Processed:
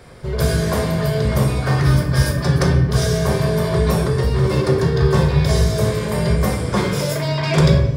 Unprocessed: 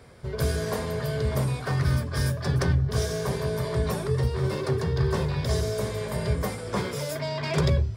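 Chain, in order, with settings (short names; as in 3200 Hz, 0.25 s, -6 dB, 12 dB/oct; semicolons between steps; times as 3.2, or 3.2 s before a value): shoebox room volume 270 m³, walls mixed, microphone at 0.9 m; gain +7 dB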